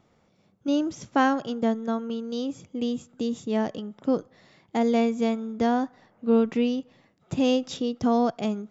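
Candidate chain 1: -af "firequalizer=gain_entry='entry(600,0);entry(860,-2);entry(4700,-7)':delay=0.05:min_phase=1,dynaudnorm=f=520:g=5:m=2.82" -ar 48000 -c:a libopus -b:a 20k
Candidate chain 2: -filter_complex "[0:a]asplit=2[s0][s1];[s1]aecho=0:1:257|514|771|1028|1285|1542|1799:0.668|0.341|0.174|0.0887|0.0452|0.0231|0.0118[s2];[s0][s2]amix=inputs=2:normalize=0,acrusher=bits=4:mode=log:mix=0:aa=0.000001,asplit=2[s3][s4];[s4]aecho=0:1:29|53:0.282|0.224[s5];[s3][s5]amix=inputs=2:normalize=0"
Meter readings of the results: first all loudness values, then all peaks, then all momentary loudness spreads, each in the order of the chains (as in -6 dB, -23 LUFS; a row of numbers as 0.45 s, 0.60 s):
-19.5 LUFS, -24.5 LUFS; -4.0 dBFS, -9.0 dBFS; 10 LU, 7 LU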